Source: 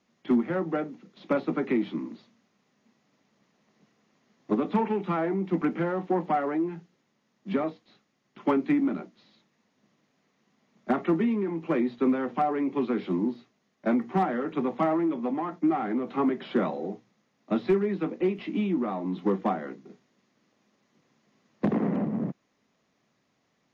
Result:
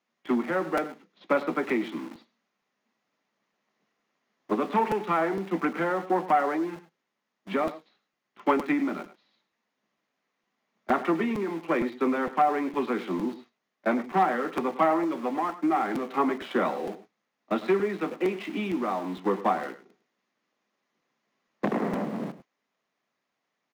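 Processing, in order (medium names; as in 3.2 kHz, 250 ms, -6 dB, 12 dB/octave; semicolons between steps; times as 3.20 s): in parallel at -4 dB: small samples zeroed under -38 dBFS; on the sum: high-pass 300 Hz 6 dB/octave; tilt shelf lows -5 dB, about 650 Hz; on a send: delay 103 ms -15 dB; on the sum: gate -49 dBFS, range -7 dB; treble shelf 3.2 kHz -9.5 dB; crackling interface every 0.46 s, samples 256, repeat, from 0.77 s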